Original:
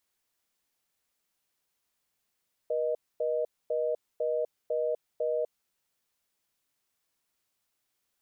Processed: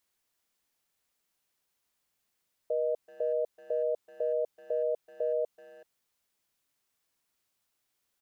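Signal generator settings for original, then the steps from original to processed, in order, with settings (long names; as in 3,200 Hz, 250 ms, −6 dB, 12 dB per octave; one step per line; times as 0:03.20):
call progress tone reorder tone, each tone −29 dBFS 2.88 s
far-end echo of a speakerphone 380 ms, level −18 dB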